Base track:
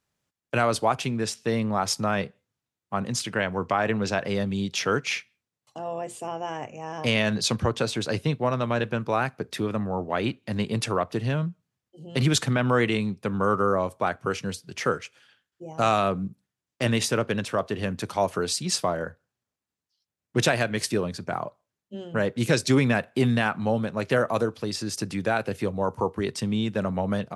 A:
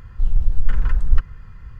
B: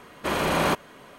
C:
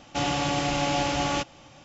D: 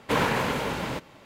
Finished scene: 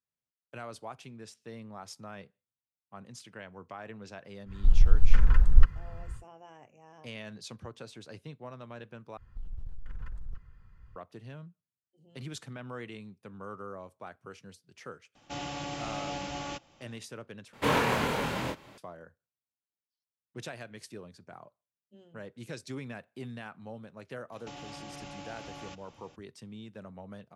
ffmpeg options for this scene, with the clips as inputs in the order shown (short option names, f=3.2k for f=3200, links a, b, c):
-filter_complex "[1:a]asplit=2[a][b];[3:a]asplit=2[c][d];[0:a]volume=-19.5dB[e];[b]acompressor=threshold=-19dB:ratio=6:attack=13:release=27:knee=1:detection=peak[f];[4:a]asplit=2[g][h];[h]adelay=25,volume=-3.5dB[i];[g][i]amix=inputs=2:normalize=0[j];[d]acompressor=threshold=-33dB:ratio=6:attack=3.2:release=140:knee=1:detection=peak[k];[e]asplit=3[l][m][n];[l]atrim=end=9.174[o];[f]atrim=end=1.79,asetpts=PTS-STARTPTS,volume=-16.5dB[p];[m]atrim=start=10.956:end=17.534[q];[j]atrim=end=1.25,asetpts=PTS-STARTPTS,volume=-3.5dB[r];[n]atrim=start=18.776[s];[a]atrim=end=1.79,asetpts=PTS-STARTPTS,volume=-2dB,afade=t=in:d=0.1,afade=t=out:st=1.69:d=0.1,adelay=196245S[t];[c]atrim=end=1.84,asetpts=PTS-STARTPTS,volume=-11.5dB,afade=t=in:d=0.004:c=hsin,afade=t=out:st=1.836:d=0.004:c=hsin,adelay=15150[u];[k]atrim=end=1.84,asetpts=PTS-STARTPTS,volume=-9dB,afade=t=in:d=0.004:c=hsin,afade=t=out:st=1.836:d=0.004:c=hsin,adelay=24320[v];[o][p]acrossfade=d=0.004:c1=hsin:c2=hsin[w];[w][q]acrossfade=d=0.004:c1=hsin:c2=hsin[x];[x][r]acrossfade=d=0.004:c1=hsin:c2=hsin[y];[y][s]acrossfade=d=0.004:c1=hsin:c2=hsin[z];[z][t][u][v]amix=inputs=4:normalize=0"